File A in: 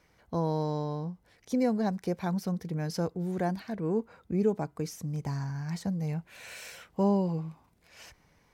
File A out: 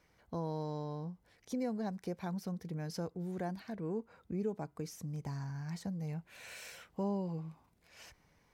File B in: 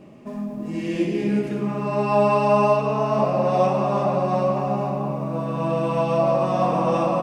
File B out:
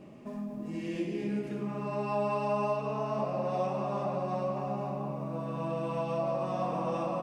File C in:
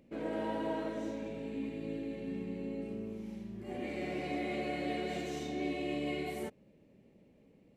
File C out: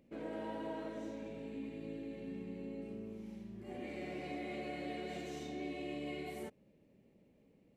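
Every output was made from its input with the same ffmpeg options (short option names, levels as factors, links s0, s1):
-af "acompressor=threshold=0.0141:ratio=1.5,volume=0.596"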